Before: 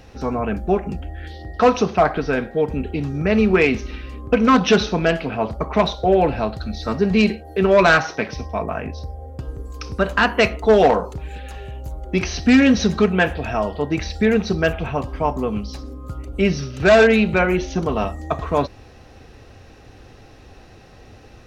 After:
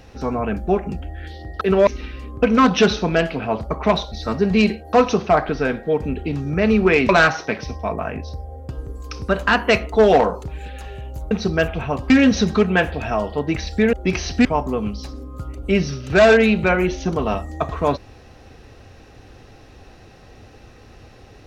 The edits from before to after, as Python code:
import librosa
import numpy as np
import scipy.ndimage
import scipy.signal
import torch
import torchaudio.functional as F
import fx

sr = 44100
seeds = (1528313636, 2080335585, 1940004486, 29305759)

y = fx.edit(x, sr, fx.swap(start_s=1.61, length_s=2.16, other_s=7.53, other_length_s=0.26),
    fx.cut(start_s=6.02, length_s=0.7),
    fx.swap(start_s=12.01, length_s=0.52, other_s=14.36, other_length_s=0.79), tone=tone)